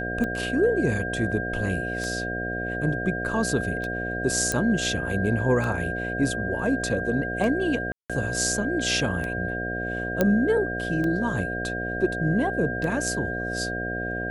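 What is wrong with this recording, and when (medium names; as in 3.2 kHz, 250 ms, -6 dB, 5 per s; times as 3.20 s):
buzz 60 Hz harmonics 12 -32 dBFS
tick 33 1/3 rpm -18 dBFS
whine 1.6 kHz -30 dBFS
4.52 s: pop -11 dBFS
7.92–8.10 s: dropout 176 ms
10.21 s: pop -8 dBFS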